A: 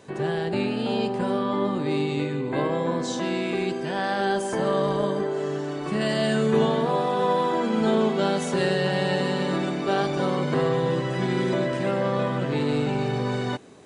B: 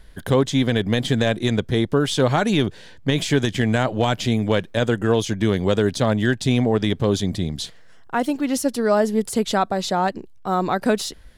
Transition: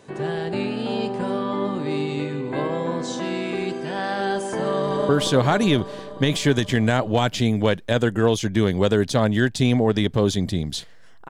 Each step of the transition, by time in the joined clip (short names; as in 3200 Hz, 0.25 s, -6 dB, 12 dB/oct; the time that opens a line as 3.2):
A
4.73–5.09 echo throw 0.18 s, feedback 80%, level -6 dB
5.09 switch to B from 1.95 s